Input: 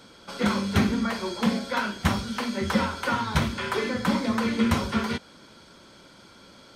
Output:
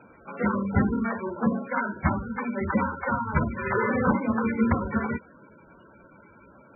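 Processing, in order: 3.62–4.12 flutter echo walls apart 6.1 m, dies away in 1.5 s; MP3 8 kbps 24000 Hz

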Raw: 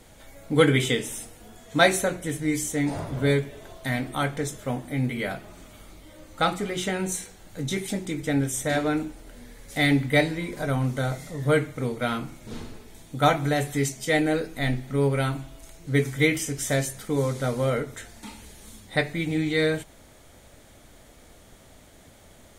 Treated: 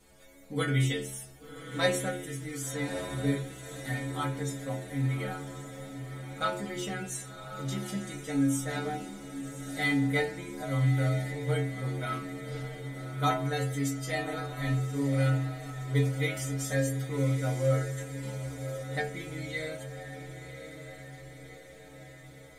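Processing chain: metallic resonator 65 Hz, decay 0.76 s, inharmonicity 0.008; diffused feedback echo 1.119 s, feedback 57%, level -9.5 dB; gain +4.5 dB

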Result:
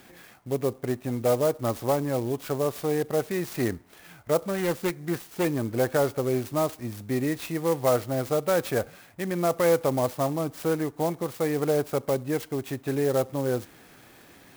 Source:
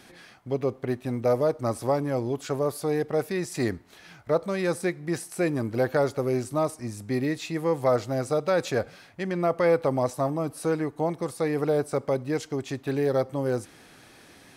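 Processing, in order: 4.47–5.45 self-modulated delay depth 0.23 ms; clock jitter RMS 0.043 ms

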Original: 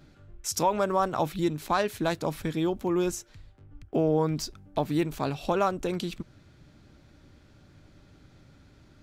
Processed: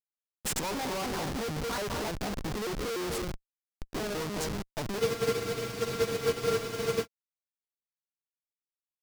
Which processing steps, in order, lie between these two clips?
trilling pitch shifter +5 st, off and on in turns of 0.148 s; dynamic EQ 2900 Hz, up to -6 dB, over -50 dBFS, Q 1.3; in parallel at -5.5 dB: bit-crush 6-bit; on the sum: non-linear reverb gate 0.28 s rising, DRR 11 dB; Schmitt trigger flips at -32.5 dBFS; bell 5100 Hz +4 dB 0.91 oct; spectral freeze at 5.02, 2.03 s; upward expander 2.5:1, over -36 dBFS

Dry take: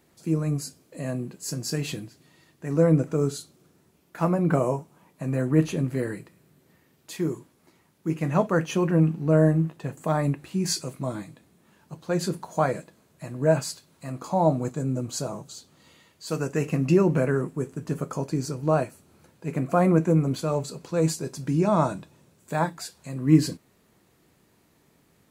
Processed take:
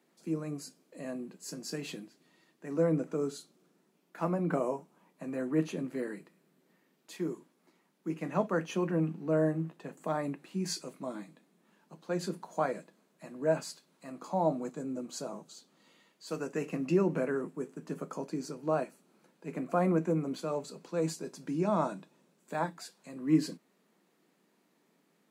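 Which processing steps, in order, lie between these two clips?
steep high-pass 170 Hz 48 dB/oct; high shelf 6800 Hz -6 dB; gain -7 dB

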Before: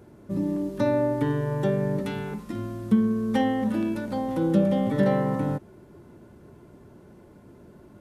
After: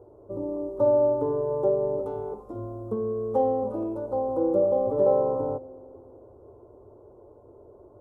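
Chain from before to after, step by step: EQ curve 110 Hz 0 dB, 170 Hz -20 dB, 460 Hz +10 dB, 1200 Hz -1 dB, 1800 Hz -30 dB, 4300 Hz -24 dB, 7600 Hz -17 dB; spring tank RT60 2.5 s, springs 42 ms, chirp 50 ms, DRR 17 dB; gain -2.5 dB

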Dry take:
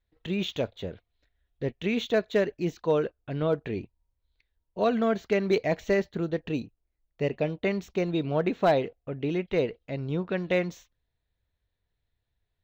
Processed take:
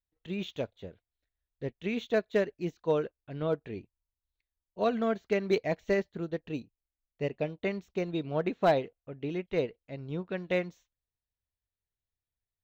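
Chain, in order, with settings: upward expander 1.5:1, over -45 dBFS; gain -1.5 dB

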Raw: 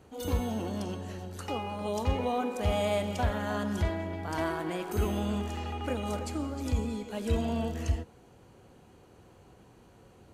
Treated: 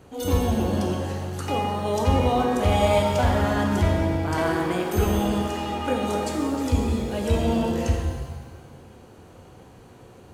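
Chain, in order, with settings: shimmer reverb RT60 1.4 s, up +7 st, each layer -8 dB, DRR 2.5 dB; gain +6 dB

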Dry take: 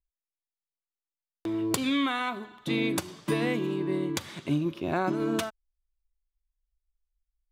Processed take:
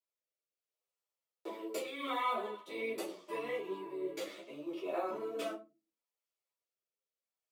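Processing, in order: in parallel at -12 dB: sample-rate reducer 12000 Hz, jitter 0%; on the sum: dynamic EQ 6600 Hz, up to -4 dB, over -48 dBFS, Q 1; reverb RT60 0.30 s, pre-delay 3 ms, DRR -8.5 dB; rotary speaker horn 0.75 Hz; notch 1600 Hz, Q 5; reverse; compressor 6:1, threshold -24 dBFS, peak gain reduction 15 dB; reverse; ladder high-pass 420 Hz, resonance 40%; ensemble effect; gain +3 dB

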